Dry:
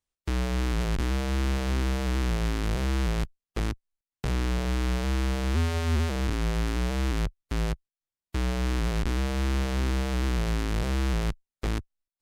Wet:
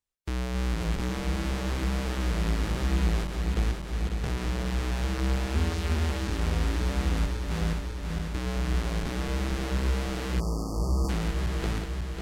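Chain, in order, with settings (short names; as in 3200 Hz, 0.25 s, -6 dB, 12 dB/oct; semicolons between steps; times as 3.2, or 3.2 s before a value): regenerating reverse delay 0.273 s, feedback 83%, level -6 dB; 10.4–11.09 spectral delete 1300–4400 Hz; 11.04–11.72 three-band squash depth 70%; gain -3 dB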